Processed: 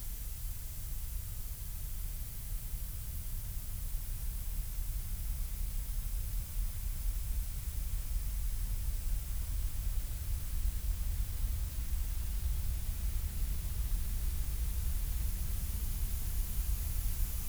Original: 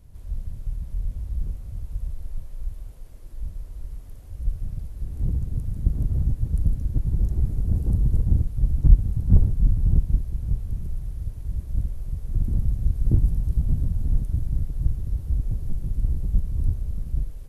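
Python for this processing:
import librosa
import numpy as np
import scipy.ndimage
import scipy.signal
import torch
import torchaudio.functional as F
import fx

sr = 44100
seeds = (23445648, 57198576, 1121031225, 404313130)

y = x + 0.5 * 10.0 ** (-16.5 / 20.0) * np.diff(np.sign(x), prepend=np.sign(x[:1]))
y = fx.doppler_pass(y, sr, speed_mps=18, closest_m=13.0, pass_at_s=3.68)
y = fx.paulstretch(y, sr, seeds[0], factor=15.0, window_s=1.0, from_s=0.36)
y = y * 10.0 ** (4.0 / 20.0)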